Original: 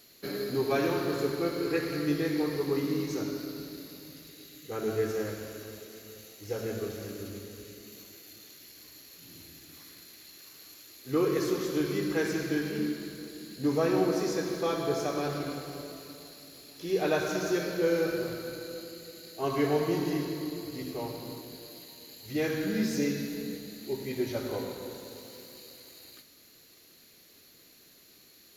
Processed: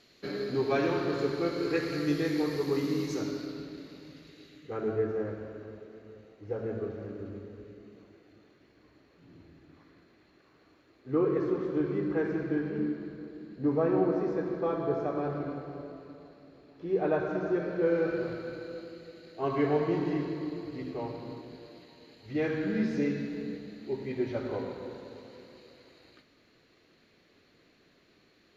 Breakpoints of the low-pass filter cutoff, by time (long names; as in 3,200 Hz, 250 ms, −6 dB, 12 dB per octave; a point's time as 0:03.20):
0:01.11 4,100 Hz
0:02.26 8,700 Hz
0:03.11 8,700 Hz
0:03.67 3,200 Hz
0:04.47 3,200 Hz
0:05.05 1,300 Hz
0:17.58 1,300 Hz
0:18.26 2,400 Hz